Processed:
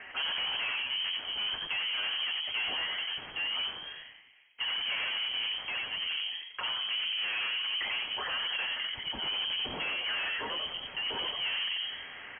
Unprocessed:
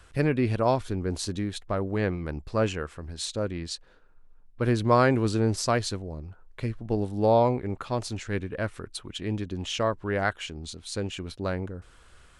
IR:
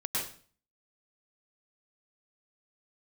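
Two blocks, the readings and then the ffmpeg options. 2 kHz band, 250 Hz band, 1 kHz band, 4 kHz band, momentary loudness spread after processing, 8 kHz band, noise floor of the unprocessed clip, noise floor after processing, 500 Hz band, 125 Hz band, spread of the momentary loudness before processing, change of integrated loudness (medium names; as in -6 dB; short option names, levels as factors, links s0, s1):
+3.0 dB, -25.5 dB, -11.5 dB, +10.5 dB, 4 LU, under -40 dB, -55 dBFS, -49 dBFS, -22.0 dB, under -30 dB, 14 LU, -3.5 dB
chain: -filter_complex "[0:a]highpass=280,bandreject=f=50:t=h:w=6,bandreject=f=100:t=h:w=6,bandreject=f=150:t=h:w=6,bandreject=f=200:t=h:w=6,bandreject=f=250:t=h:w=6,bandreject=f=300:t=h:w=6,bandreject=f=350:t=h:w=6,bandreject=f=400:t=h:w=6,aecho=1:1:5.9:0.53,acompressor=threshold=0.02:ratio=8,asoftclip=type=tanh:threshold=0.015,asplit=7[s0][s1][s2][s3][s4][s5][s6];[s1]adelay=89,afreqshift=-88,volume=0.631[s7];[s2]adelay=178,afreqshift=-176,volume=0.309[s8];[s3]adelay=267,afreqshift=-264,volume=0.151[s9];[s4]adelay=356,afreqshift=-352,volume=0.0741[s10];[s5]adelay=445,afreqshift=-440,volume=0.0363[s11];[s6]adelay=534,afreqshift=-528,volume=0.0178[s12];[s0][s7][s8][s9][s10][s11][s12]amix=inputs=7:normalize=0,aeval=exprs='0.0335*sin(PI/2*2.82*val(0)/0.0335)':c=same,lowpass=f=2800:t=q:w=0.5098,lowpass=f=2800:t=q:w=0.6013,lowpass=f=2800:t=q:w=0.9,lowpass=f=2800:t=q:w=2.563,afreqshift=-3300" -ar 11025 -c:a libmp3lame -b:a 24k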